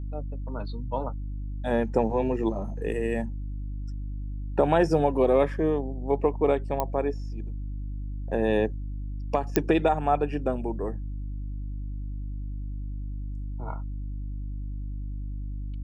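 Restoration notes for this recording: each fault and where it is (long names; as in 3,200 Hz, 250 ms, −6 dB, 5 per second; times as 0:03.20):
mains hum 50 Hz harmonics 6 −33 dBFS
0:06.80: click −13 dBFS
0:09.56: click −7 dBFS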